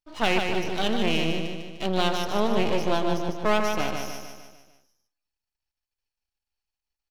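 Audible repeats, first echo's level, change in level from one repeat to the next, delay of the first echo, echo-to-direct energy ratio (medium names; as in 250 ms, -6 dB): 6, -5.0 dB, -6.0 dB, 150 ms, -3.5 dB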